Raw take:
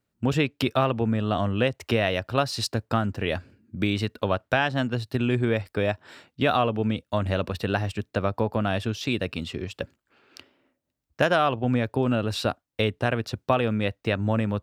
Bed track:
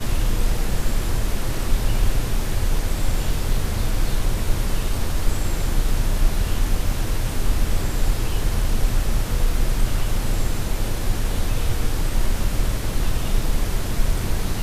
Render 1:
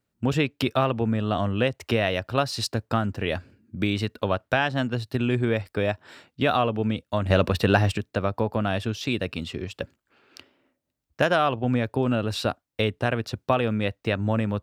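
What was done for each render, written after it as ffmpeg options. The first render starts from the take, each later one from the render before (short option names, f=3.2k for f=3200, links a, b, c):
-filter_complex "[0:a]asettb=1/sr,asplit=3[a][b][c];[a]atrim=end=7.304[d];[b]atrim=start=7.3:end=7.98,asetpts=PTS-STARTPTS,afade=t=in:d=0.004:c=qsin,afade=t=out:st=0.676:d=0.004:c=qsin,acontrast=71[e];[c]atrim=start=7.976[f];[d][e]acrossfade=d=0.004:c1=hsin:c2=qsin[g];[g][f]acrossfade=d=0.004:c1=qsin:c2=hsin"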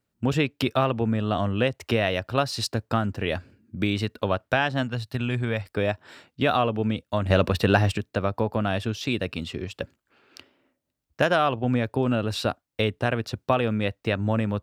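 -filter_complex "[0:a]asettb=1/sr,asplit=3[a][b][c];[a]atrim=end=4.834[d];[b]atrim=start=4.83:end=5.65,asetpts=PTS-STARTPTS,afade=t=in:d=0.004:c=qsin,afade=t=out:st=0.816:d=0.004:c=qsin,equalizer=f=340:w=1.5:g=-8.5[e];[c]atrim=start=5.646[f];[d][e]acrossfade=d=0.004:c1=hsin:c2=qsin[g];[g][f]acrossfade=d=0.004:c1=qsin:c2=hsin"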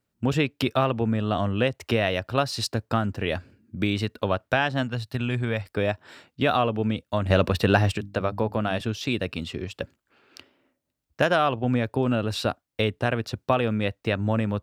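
-filter_complex "[0:a]asettb=1/sr,asplit=3[a][b][c];[a]atrim=end=7.954[d];[b]atrim=start=7.95:end=8.81,asetpts=PTS-STARTPTS,afade=t=in:d=0.004:c=qsin,afade=t=out:st=0.856:d=0.004:c=qsin,bandreject=f=50:t=h:w=6,bandreject=f=100:t=h:w=6,bandreject=f=150:t=h:w=6,bandreject=f=200:t=h:w=6,bandreject=f=250:t=h:w=6,bandreject=f=300:t=h:w=6[e];[c]atrim=start=8.806[f];[d][e]acrossfade=d=0.004:c1=hsin:c2=qsin[g];[g][f]acrossfade=d=0.004:c1=qsin:c2=hsin"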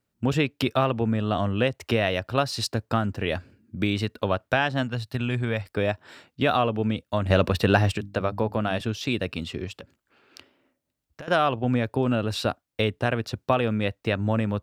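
-filter_complex "[0:a]asettb=1/sr,asplit=3[a][b][c];[a]atrim=end=9.774[d];[b]atrim=start=9.77:end=11.28,asetpts=PTS-STARTPTS,afade=t=in:d=0.004:c=qsin,afade=t=out:st=1.506:d=0.004:c=qsin,acompressor=threshold=-38dB:ratio=6:attack=3.2:release=140:knee=1:detection=peak[e];[c]atrim=start=11.276[f];[d][e]acrossfade=d=0.004:c1=hsin:c2=qsin[g];[g][f]acrossfade=d=0.004:c1=qsin:c2=hsin"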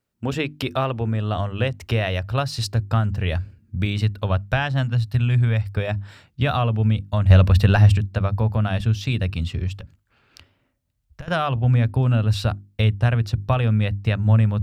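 -af "bandreject=f=50:t=h:w=6,bandreject=f=100:t=h:w=6,bandreject=f=150:t=h:w=6,bandreject=f=200:t=h:w=6,bandreject=f=250:t=h:w=6,bandreject=f=300:t=h:w=6,bandreject=f=350:t=h:w=6,asubboost=boost=11:cutoff=100"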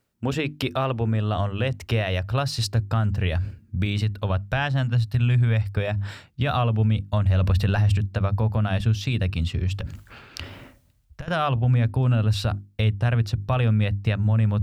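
-af "areverse,acompressor=mode=upward:threshold=-22dB:ratio=2.5,areverse,alimiter=limit=-13.5dB:level=0:latency=1:release=81"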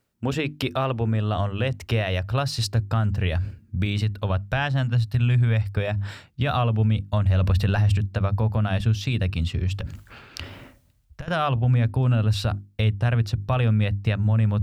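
-af anull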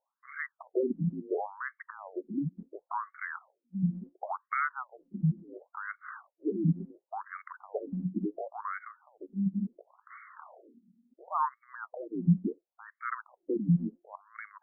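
-af "afreqshift=-280,afftfilt=real='re*between(b*sr/1024,240*pow(1600/240,0.5+0.5*sin(2*PI*0.71*pts/sr))/1.41,240*pow(1600/240,0.5+0.5*sin(2*PI*0.71*pts/sr))*1.41)':imag='im*between(b*sr/1024,240*pow(1600/240,0.5+0.5*sin(2*PI*0.71*pts/sr))/1.41,240*pow(1600/240,0.5+0.5*sin(2*PI*0.71*pts/sr))*1.41)':win_size=1024:overlap=0.75"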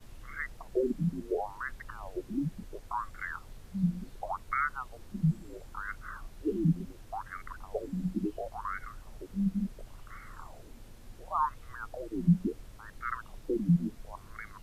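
-filter_complex "[1:a]volume=-28dB[a];[0:a][a]amix=inputs=2:normalize=0"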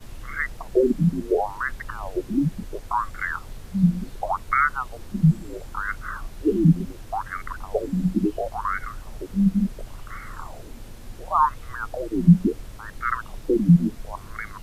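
-af "volume=10.5dB"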